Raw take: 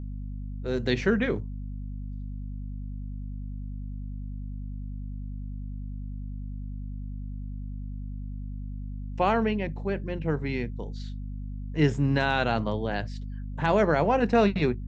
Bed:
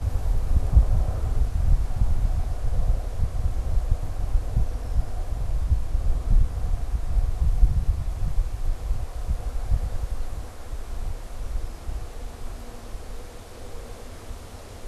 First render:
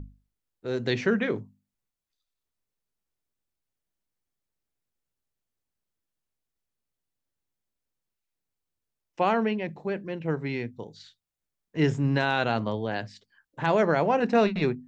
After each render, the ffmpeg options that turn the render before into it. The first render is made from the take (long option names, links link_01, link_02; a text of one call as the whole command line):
ffmpeg -i in.wav -af "bandreject=frequency=50:width_type=h:width=6,bandreject=frequency=100:width_type=h:width=6,bandreject=frequency=150:width_type=h:width=6,bandreject=frequency=200:width_type=h:width=6,bandreject=frequency=250:width_type=h:width=6" out.wav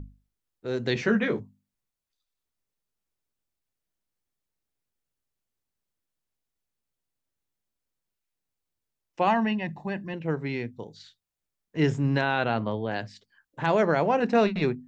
ffmpeg -i in.wav -filter_complex "[0:a]asettb=1/sr,asplit=3[link_01][link_02][link_03];[link_01]atrim=end=0.944[link_04];[link_02]atrim=start=0.94:end=1.4,asetpts=PTS-STARTPTS,afade=type=in:duration=0.004:curve=qsin,afade=type=out:start_time=0.456:duration=0.004:curve=qsin,asplit=2[link_05][link_06];[link_06]adelay=14,volume=-4dB[link_07];[link_05][link_07]amix=inputs=2:normalize=0,atrim=end_sample=20286[link_08];[link_03]atrim=start=1.396[link_09];[link_04][link_08]acrossfade=duration=0.004:curve1=hsin:curve2=qsin[link_10];[link_10][link_09]acrossfade=duration=0.004:curve1=qsin:curve2=hsin,asettb=1/sr,asplit=3[link_11][link_12][link_13];[link_11]atrim=end=9.274[link_14];[link_12]atrim=start=9.27:end=10.14,asetpts=PTS-STARTPTS,afade=type=in:duration=0.004:curve=qsin,afade=type=out:start_time=0.866:duration=0.004:curve=qsin,aecho=1:1:1.1:0.7,atrim=end_sample=38367[link_15];[link_13]atrim=start=10.136[link_16];[link_14][link_15]acrossfade=duration=0.004:curve1=hsin:curve2=qsin[link_17];[link_17][link_16]acrossfade=duration=0.004:curve1=qsin:curve2=hsin,asettb=1/sr,asplit=3[link_18][link_19][link_20];[link_18]atrim=end=12.214[link_21];[link_19]atrim=start=12.21:end=12.91,asetpts=PTS-STARTPTS,afade=type=in:duration=0.004:curve=qsin,afade=type=out:start_time=0.696:duration=0.004:curve=qsin,lowpass=3500[link_22];[link_20]atrim=start=12.906[link_23];[link_21][link_22]acrossfade=duration=0.004:curve1=hsin:curve2=qsin[link_24];[link_24][link_23]acrossfade=duration=0.004:curve1=qsin:curve2=hsin" out.wav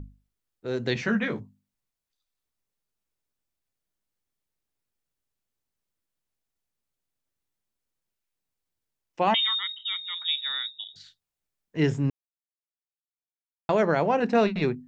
ffmpeg -i in.wav -filter_complex "[0:a]asettb=1/sr,asplit=3[link_01][link_02][link_03];[link_01]atrim=end=0.934[link_04];[link_02]atrim=start=0.93:end=1.41,asetpts=PTS-STARTPTS,afade=type=in:duration=0.004:curve=qsin,afade=type=out:start_time=0.476:duration=0.004:curve=qsin,equalizer=frequency=400:width_type=o:width=0.77:gain=-7[link_05];[link_03]atrim=start=1.406[link_06];[link_04][link_05]acrossfade=duration=0.004:curve1=hsin:curve2=qsin[link_07];[link_07][link_06]acrossfade=duration=0.004:curve1=qsin:curve2=hsin,asettb=1/sr,asplit=3[link_08][link_09][link_10];[link_08]atrim=end=9.344[link_11];[link_09]atrim=start=9.34:end=10.96,asetpts=PTS-STARTPTS,afade=type=in:duration=0.004:curve=qsin,afade=type=out:start_time=1.616:duration=0.004:curve=qsin,lowpass=frequency=3300:width_type=q:width=0.5098,lowpass=frequency=3300:width_type=q:width=0.6013,lowpass=frequency=3300:width_type=q:width=0.9,lowpass=frequency=3300:width_type=q:width=2.563,afreqshift=-3900[link_12];[link_10]atrim=start=10.956[link_13];[link_11][link_12]acrossfade=duration=0.004:curve1=hsin:curve2=qsin[link_14];[link_14][link_13]acrossfade=duration=0.004:curve1=qsin:curve2=hsin,asplit=3[link_15][link_16][link_17];[link_15]atrim=end=12.1,asetpts=PTS-STARTPTS,afade=type=out:start_time=12.096:duration=0.004:curve=hsin[link_18];[link_16]atrim=start=12.1:end=13.69,asetpts=PTS-STARTPTS,volume=0[link_19];[link_17]atrim=start=13.69,asetpts=PTS-STARTPTS,afade=type=in:duration=0.004:curve=hsin[link_20];[link_18][link_19][link_20]concat=n=3:v=0:a=1" out.wav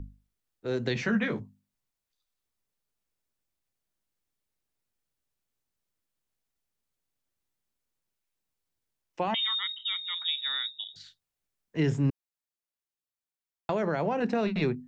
ffmpeg -i in.wav -filter_complex "[0:a]alimiter=limit=-16dB:level=0:latency=1:release=26,acrossover=split=240[link_01][link_02];[link_02]acompressor=threshold=-26dB:ratio=6[link_03];[link_01][link_03]amix=inputs=2:normalize=0" out.wav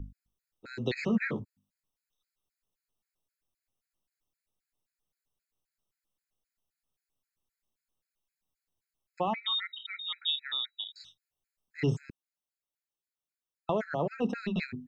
ffmpeg -i in.wav -af "afftfilt=real='re*gt(sin(2*PI*3.8*pts/sr)*(1-2*mod(floor(b*sr/1024/1300),2)),0)':imag='im*gt(sin(2*PI*3.8*pts/sr)*(1-2*mod(floor(b*sr/1024/1300),2)),0)':win_size=1024:overlap=0.75" out.wav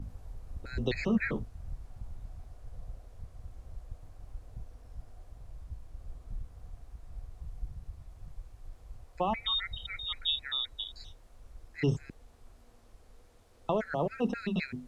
ffmpeg -i in.wav -i bed.wav -filter_complex "[1:a]volume=-21dB[link_01];[0:a][link_01]amix=inputs=2:normalize=0" out.wav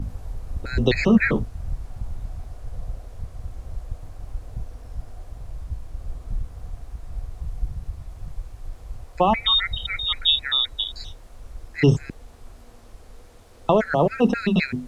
ffmpeg -i in.wav -af "volume=12dB" out.wav